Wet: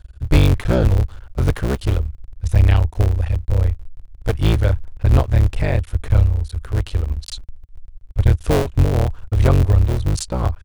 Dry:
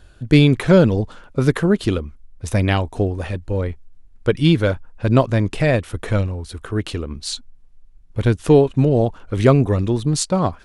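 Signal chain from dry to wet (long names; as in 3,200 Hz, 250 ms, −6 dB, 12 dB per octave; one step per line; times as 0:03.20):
sub-harmonics by changed cycles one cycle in 3, muted
low shelf with overshoot 120 Hz +14 dB, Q 1.5
level −4 dB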